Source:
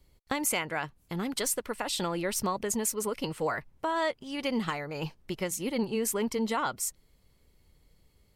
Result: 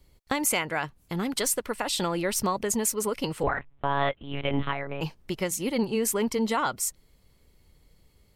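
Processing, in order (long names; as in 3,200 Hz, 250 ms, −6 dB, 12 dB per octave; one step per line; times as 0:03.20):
0:03.43–0:05.01: one-pitch LPC vocoder at 8 kHz 140 Hz
level +3.5 dB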